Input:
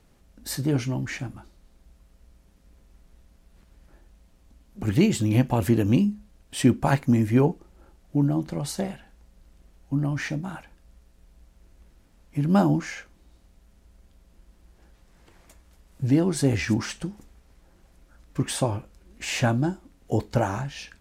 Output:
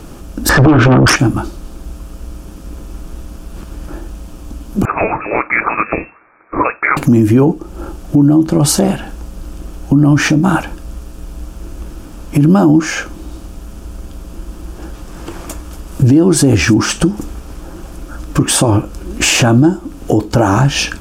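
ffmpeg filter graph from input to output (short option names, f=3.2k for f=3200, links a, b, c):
-filter_complex "[0:a]asettb=1/sr,asplit=3[a][b][c];[a]atrim=end=0.494[d];[b]atrim=start=0.49:end=1.16,asetpts=PTS-STARTPTS,afade=t=in:d=0.004:c=qsin,afade=t=out:st=0.666:d=0.004:c=qsin,acompressor=threshold=-30dB:ratio=16:attack=3.2:release=140:knee=1:detection=peak,lowpass=f=1.6k:t=q:w=2.7,aeval=exprs='0.1*sin(PI/2*4.47*val(0)/0.1)':c=same[e];[c]atrim=start=1.156[f];[d][e]acrossfade=d=0.004:c1=hsin:c2=qsin[g];[g][f]acrossfade=d=0.004:c1=qsin:c2=hsin,asettb=1/sr,asplit=3[h][i][j];[h]atrim=end=4.854[k];[i]atrim=start=4.85:end=6.97,asetpts=PTS-STARTPTS,afade=t=in:d=0.004:c=qsin,afade=t=out:st=2.116:d=0.004:c=qsin,highpass=f=730:w=0.5412,highpass=f=730:w=1.3066,lowpass=f=2.5k:t=q:w=0.5098,lowpass=f=2.5k:t=q:w=0.6013,lowpass=f=2.5k:t=q:w=0.9,lowpass=f=2.5k:t=q:w=2.563,afreqshift=-2900[l];[j]atrim=start=6.966[m];[k][l]acrossfade=d=0.004:c1=hsin:c2=qsin[n];[n][m]acrossfade=d=0.004:c1=qsin:c2=hsin,equalizer=f=315:t=o:w=0.33:g=9,equalizer=f=1.25k:t=o:w=0.33:g=4,equalizer=f=2k:t=o:w=0.33:g=-10,equalizer=f=4k:t=o:w=0.33:g=-6,acompressor=threshold=-34dB:ratio=2.5,alimiter=level_in=27.5dB:limit=-1dB:release=50:level=0:latency=1,volume=-1dB"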